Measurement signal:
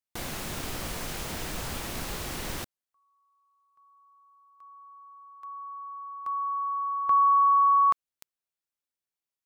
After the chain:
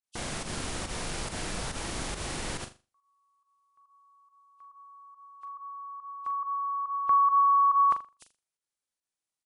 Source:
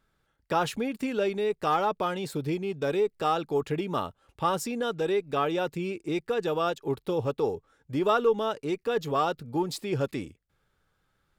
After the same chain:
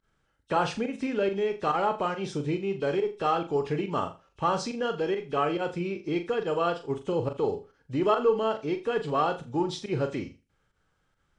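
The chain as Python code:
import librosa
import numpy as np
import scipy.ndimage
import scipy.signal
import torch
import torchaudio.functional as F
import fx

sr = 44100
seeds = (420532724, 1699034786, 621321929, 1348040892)

y = fx.freq_compress(x, sr, knee_hz=2500.0, ratio=1.5)
y = fx.volume_shaper(y, sr, bpm=140, per_beat=1, depth_db=-20, release_ms=76.0, shape='fast start')
y = fx.room_flutter(y, sr, wall_m=7.0, rt60_s=0.29)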